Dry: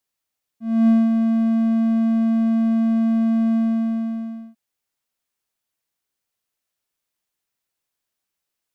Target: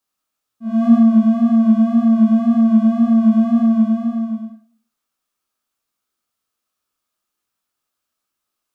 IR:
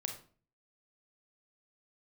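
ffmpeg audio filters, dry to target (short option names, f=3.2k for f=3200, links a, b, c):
-filter_complex "[0:a]flanger=delay=17.5:depth=7.8:speed=1.9,acontrast=49,equalizer=f=125:t=o:w=0.33:g=-10,equalizer=f=250:t=o:w=0.33:g=6,equalizer=f=1.25k:t=o:w=0.33:g=10,equalizer=f=2k:t=o:w=0.33:g=-5[a];[1:a]atrim=start_sample=2205[b];[a][b]afir=irnorm=-1:irlink=0"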